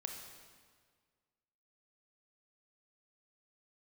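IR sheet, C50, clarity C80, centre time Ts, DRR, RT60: 4.0 dB, 6.0 dB, 50 ms, 2.5 dB, 1.7 s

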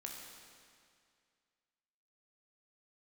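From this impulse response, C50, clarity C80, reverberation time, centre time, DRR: 2.0 dB, 3.0 dB, 2.2 s, 87 ms, −0.5 dB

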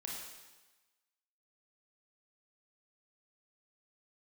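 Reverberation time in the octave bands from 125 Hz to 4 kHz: 1.1, 1.1, 1.1, 1.2, 1.2, 1.2 seconds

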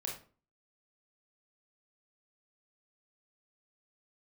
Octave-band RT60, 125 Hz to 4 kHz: 0.50, 0.50, 0.45, 0.40, 0.30, 0.30 seconds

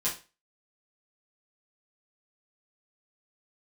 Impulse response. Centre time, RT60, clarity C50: 24 ms, 0.30 s, 9.0 dB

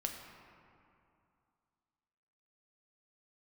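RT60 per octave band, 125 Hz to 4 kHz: 2.6, 2.7, 2.4, 2.7, 2.1, 1.3 seconds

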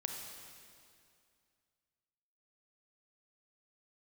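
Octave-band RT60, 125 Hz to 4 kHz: 2.5, 2.5, 2.4, 2.3, 2.2, 2.1 seconds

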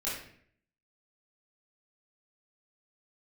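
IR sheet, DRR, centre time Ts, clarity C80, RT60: −10.0 dB, 50 ms, 6.5 dB, 0.60 s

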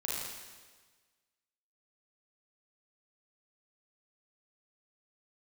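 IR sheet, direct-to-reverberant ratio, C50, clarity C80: −6.0 dB, −2.5 dB, 1.0 dB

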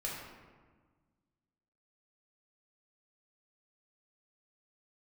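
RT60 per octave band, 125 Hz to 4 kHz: 2.1, 2.0, 1.5, 1.4, 1.2, 0.85 seconds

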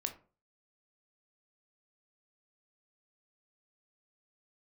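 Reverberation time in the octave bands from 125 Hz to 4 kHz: 0.45, 0.40, 0.40, 0.35, 0.30, 0.20 seconds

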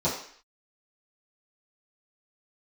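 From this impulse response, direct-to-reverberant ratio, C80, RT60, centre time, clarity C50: −11.0 dB, 8.5 dB, 0.55 s, 35 ms, 5.5 dB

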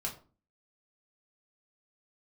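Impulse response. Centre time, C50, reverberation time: 17 ms, 11.5 dB, 0.40 s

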